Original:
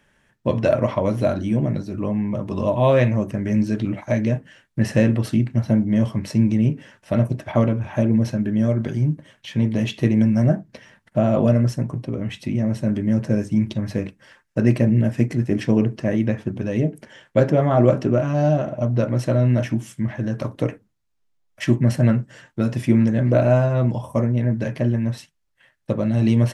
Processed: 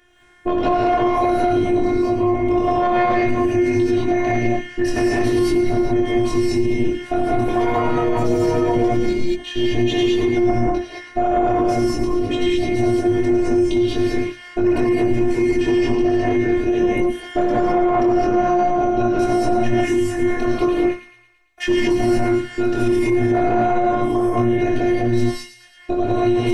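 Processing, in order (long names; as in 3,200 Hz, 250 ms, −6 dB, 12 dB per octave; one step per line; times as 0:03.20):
high-shelf EQ 6,300 Hz −7.5 dB
mains-hum notches 60/120/180/240 Hz
chorus effect 1.3 Hz, delay 19 ms, depth 6.6 ms
phases set to zero 355 Hz
soft clipping −17.5 dBFS, distortion −17 dB
delay with a high-pass on its return 112 ms, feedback 53%, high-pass 1,900 Hz, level −9.5 dB
0:07.31–0:09.52: delay with pitch and tempo change per echo 167 ms, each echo +5 semitones, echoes 2, each echo −6 dB
reverb whose tail is shaped and stops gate 240 ms rising, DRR −5.5 dB
boost into a limiter +20 dB
level −9 dB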